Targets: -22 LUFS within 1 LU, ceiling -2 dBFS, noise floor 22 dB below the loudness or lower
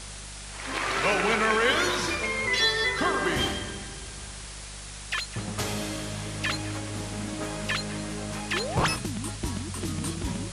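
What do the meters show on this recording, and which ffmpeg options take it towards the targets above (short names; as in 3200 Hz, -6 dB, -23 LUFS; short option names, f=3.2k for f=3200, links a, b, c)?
hum 50 Hz; harmonics up to 200 Hz; hum level -41 dBFS; noise floor -40 dBFS; noise floor target -50 dBFS; loudness -27.5 LUFS; peak -11.5 dBFS; loudness target -22.0 LUFS
-> -af "bandreject=f=50:t=h:w=4,bandreject=f=100:t=h:w=4,bandreject=f=150:t=h:w=4,bandreject=f=200:t=h:w=4"
-af "afftdn=nr=10:nf=-40"
-af "volume=5.5dB"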